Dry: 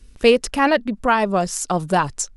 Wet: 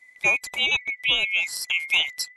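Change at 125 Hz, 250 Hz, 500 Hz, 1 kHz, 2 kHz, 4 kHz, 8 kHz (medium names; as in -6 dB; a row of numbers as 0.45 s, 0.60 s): under -20 dB, -25.0 dB, -21.5 dB, -19.0 dB, +3.5 dB, +7.0 dB, -7.5 dB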